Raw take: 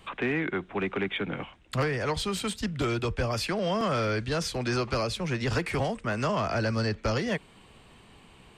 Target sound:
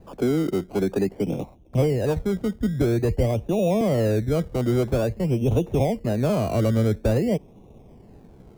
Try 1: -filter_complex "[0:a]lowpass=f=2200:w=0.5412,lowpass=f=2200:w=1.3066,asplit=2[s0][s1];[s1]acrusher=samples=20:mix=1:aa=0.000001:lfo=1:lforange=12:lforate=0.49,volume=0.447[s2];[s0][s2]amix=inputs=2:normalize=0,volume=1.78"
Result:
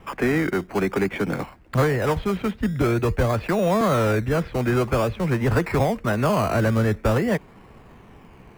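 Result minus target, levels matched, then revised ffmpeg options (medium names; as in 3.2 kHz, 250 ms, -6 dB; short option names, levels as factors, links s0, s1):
2 kHz band +10.0 dB
-filter_complex "[0:a]lowpass=f=710:w=0.5412,lowpass=f=710:w=1.3066,asplit=2[s0][s1];[s1]acrusher=samples=20:mix=1:aa=0.000001:lfo=1:lforange=12:lforate=0.49,volume=0.447[s2];[s0][s2]amix=inputs=2:normalize=0,volume=1.78"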